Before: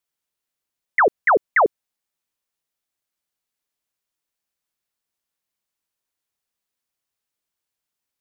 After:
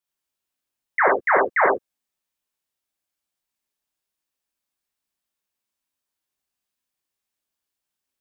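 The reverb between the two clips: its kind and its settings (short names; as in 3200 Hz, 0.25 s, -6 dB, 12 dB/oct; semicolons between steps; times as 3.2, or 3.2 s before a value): non-linear reverb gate 0.13 s flat, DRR -3.5 dB; gain -5.5 dB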